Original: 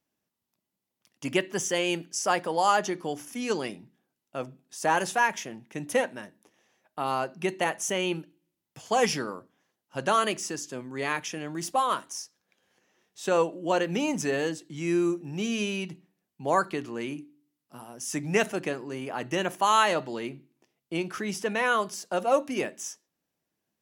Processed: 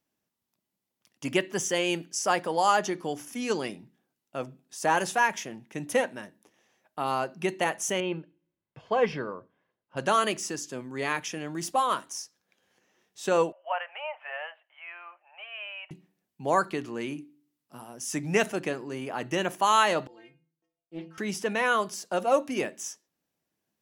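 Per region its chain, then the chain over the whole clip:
8–9.97 air absorption 370 m + comb 1.9 ms, depth 33%
13.52–15.91 Chebyshev band-pass 600–3000 Hz, order 5 + air absorption 210 m
20.07–21.18 LPF 1900 Hz 6 dB/oct + metallic resonator 160 Hz, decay 0.44 s, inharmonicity 0.008 + Doppler distortion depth 0.29 ms
whole clip: dry

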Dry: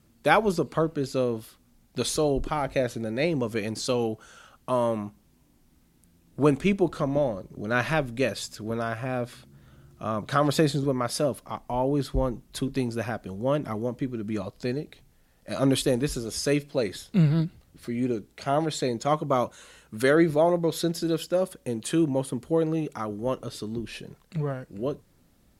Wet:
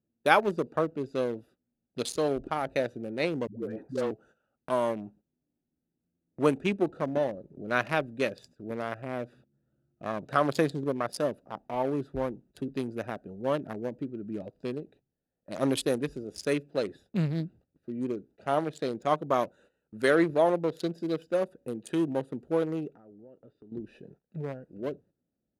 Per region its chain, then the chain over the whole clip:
3.47–4.11 band shelf 5300 Hz -11.5 dB 2.6 oct + dispersion highs, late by 0.138 s, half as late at 440 Hz
22.89–23.72 LPF 3400 Hz + compressor, threshold -43 dBFS
whole clip: Wiener smoothing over 41 samples; HPF 350 Hz 6 dB/oct; gate -55 dBFS, range -13 dB

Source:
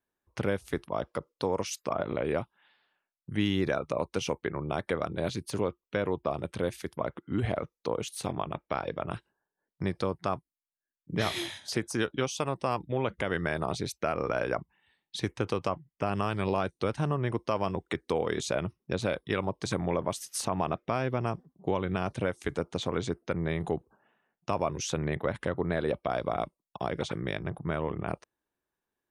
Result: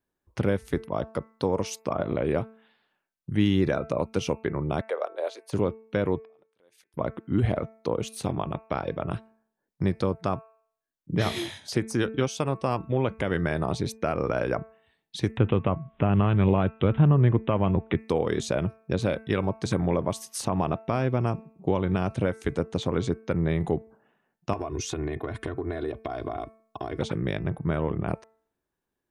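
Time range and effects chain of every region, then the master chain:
4.81–5.53 steep high-pass 500 Hz + tilt shelf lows +6.5 dB, about 820 Hz
6.2–6.94 HPF 490 Hz + compressor 5:1, threshold -45 dBFS + auto swell 0.794 s
15.37–17.98 tone controls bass +6 dB, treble 0 dB + upward compressor, threshold -32 dBFS + careless resampling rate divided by 6×, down none, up filtered
24.53–26.99 notch 3000 Hz, Q 23 + comb 2.8 ms, depth 88% + compressor 12:1, threshold -30 dBFS
whole clip: low shelf 470 Hz +7.5 dB; de-hum 221.9 Hz, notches 12

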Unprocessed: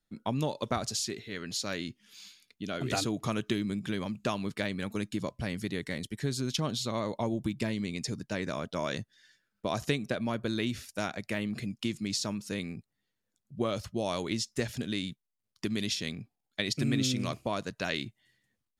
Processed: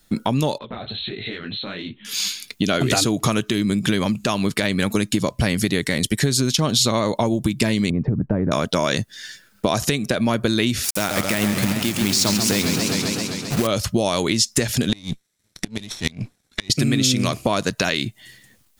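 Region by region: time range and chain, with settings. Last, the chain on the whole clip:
0.58–2.05 brick-wall FIR low-pass 4200 Hz + compressor 16:1, threshold -46 dBFS + detuned doubles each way 54 cents
7.9–8.52 Bessel low-pass 850 Hz, order 4 + compressor 3:1, threshold -37 dBFS + low shelf 190 Hz +9.5 dB
10.84–13.67 companded quantiser 4-bit + warbling echo 0.131 s, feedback 75%, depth 184 cents, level -9 dB
14.89–16.7 minimum comb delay 0.53 ms + LPF 8800 Hz + flipped gate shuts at -23 dBFS, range -27 dB
whole clip: compressor 6:1, threshold -40 dBFS; high shelf 4900 Hz +7.5 dB; maximiser +28.5 dB; gain -5.5 dB

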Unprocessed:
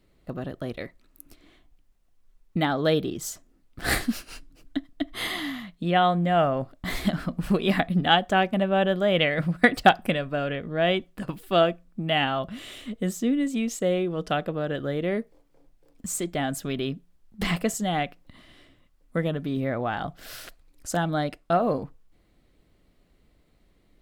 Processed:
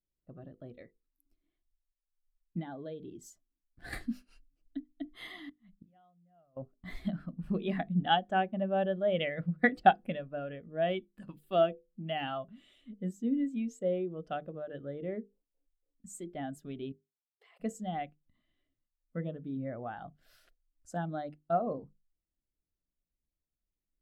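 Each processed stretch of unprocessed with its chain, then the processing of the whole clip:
2.6–3.93 notch 1300 Hz, Q 11 + compressor 10:1, threshold -25 dBFS
5.49–6.57 flipped gate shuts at -24 dBFS, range -26 dB + low shelf 97 Hz +10 dB + mismatched tape noise reduction decoder only
10.82–12.38 de-esser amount 90% + high shelf 2400 Hz +8 dB
16.92–17.6 brick-wall FIR high-pass 370 Hz + level quantiser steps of 21 dB
whole clip: notches 50/100/150/200/250/300/350/400/450/500 Hz; spectral expander 1.5:1; gain -5.5 dB

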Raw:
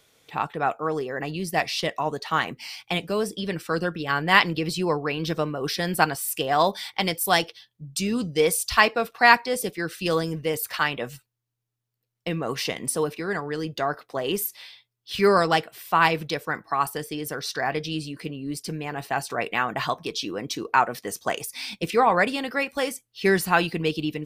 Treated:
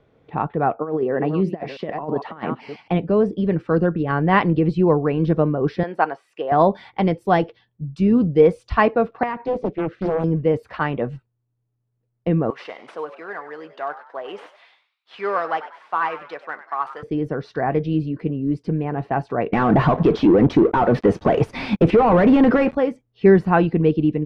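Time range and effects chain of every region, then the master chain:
0.78–2.88 reverse delay 0.33 s, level -13 dB + HPF 170 Hz + negative-ratio compressor -29 dBFS, ratio -0.5
5.83–6.52 HPF 570 Hz + high shelf 5900 Hz -11 dB
9.23–10.24 compressor, threshold -22 dBFS + air absorption 89 m + Doppler distortion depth 0.68 ms
12.5–17.03 CVSD 64 kbps + HPF 950 Hz + frequency-shifting echo 97 ms, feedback 45%, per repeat +98 Hz, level -13 dB
19.53–22.75 compressor 2.5:1, threshold -33 dBFS + sample leveller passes 5
whole clip: LPF 2400 Hz 12 dB/oct; tilt shelf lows +9.5 dB, about 1100 Hz; gain +1.5 dB

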